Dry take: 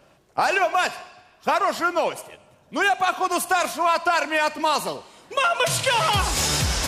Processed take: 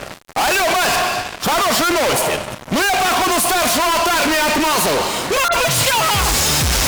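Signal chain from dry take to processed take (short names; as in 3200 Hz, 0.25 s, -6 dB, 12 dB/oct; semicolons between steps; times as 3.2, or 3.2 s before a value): fuzz box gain 49 dB, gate -54 dBFS; 5.48–6.11 dispersion highs, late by 46 ms, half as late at 2600 Hz; gain -2 dB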